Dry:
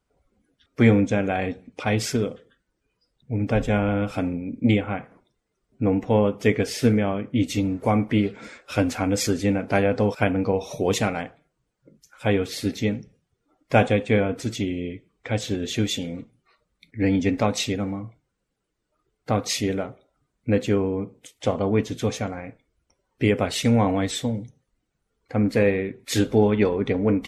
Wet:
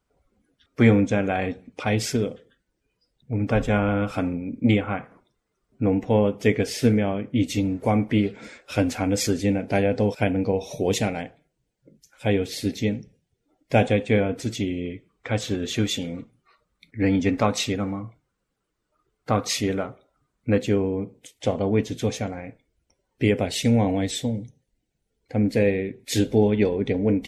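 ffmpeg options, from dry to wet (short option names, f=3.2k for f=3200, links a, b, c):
-af "asetnsamples=n=441:p=0,asendcmd='1.87 equalizer g -5;3.33 equalizer g 4;5.86 equalizer g -5;9.41 equalizer g -11.5;13.88 equalizer g -5;14.86 equalizer g 4.5;20.58 equalizer g -7;23.42 equalizer g -14.5',equalizer=f=1.2k:t=o:w=0.63:g=1"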